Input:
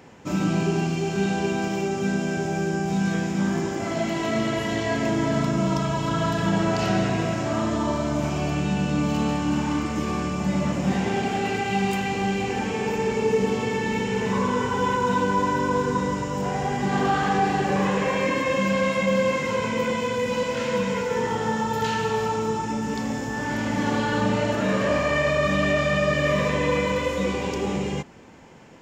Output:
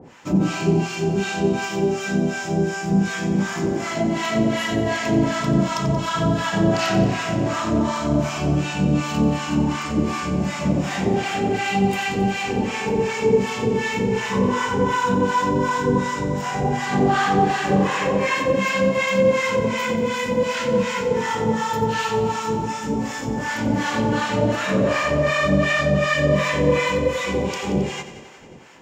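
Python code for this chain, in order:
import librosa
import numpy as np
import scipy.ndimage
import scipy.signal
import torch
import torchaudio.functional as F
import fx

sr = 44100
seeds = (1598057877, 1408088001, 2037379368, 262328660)

p1 = fx.harmonic_tremolo(x, sr, hz=2.7, depth_pct=100, crossover_hz=800.0)
p2 = p1 + fx.echo_thinned(p1, sr, ms=90, feedback_pct=74, hz=160.0, wet_db=-12.5, dry=0)
y = p2 * 10.0 ** (7.5 / 20.0)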